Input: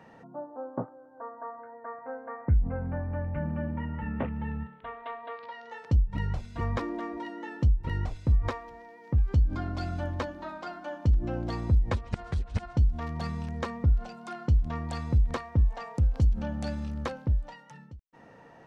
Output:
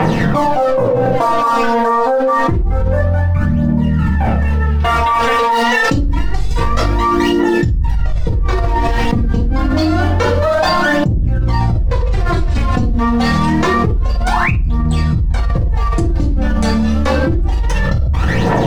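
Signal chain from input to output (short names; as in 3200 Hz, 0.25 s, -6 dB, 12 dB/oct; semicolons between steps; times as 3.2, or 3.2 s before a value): 5.51–8 high shelf 3800 Hz +11 dB; sample leveller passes 2; 14.31–14.51 painted sound rise 810–2900 Hz -31 dBFS; phaser 0.27 Hz, delay 4.5 ms, feedback 75%; reverb RT60 0.60 s, pre-delay 4 ms, DRR -3.5 dB; fast leveller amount 100%; gain -14.5 dB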